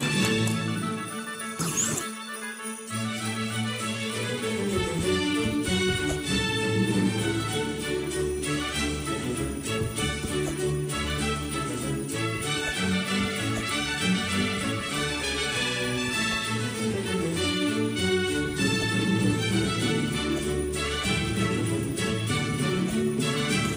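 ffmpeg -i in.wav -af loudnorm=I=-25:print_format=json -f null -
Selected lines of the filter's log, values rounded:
"input_i" : "-26.8",
"input_tp" : "-10.7",
"input_lra" : "3.0",
"input_thresh" : "-36.8",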